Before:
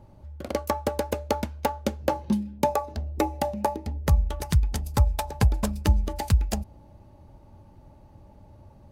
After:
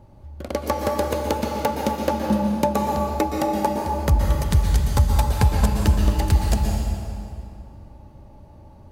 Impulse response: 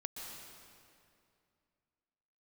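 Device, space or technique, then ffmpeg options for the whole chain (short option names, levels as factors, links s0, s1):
stairwell: -filter_complex "[1:a]atrim=start_sample=2205[s0];[0:a][s0]afir=irnorm=-1:irlink=0,volume=2"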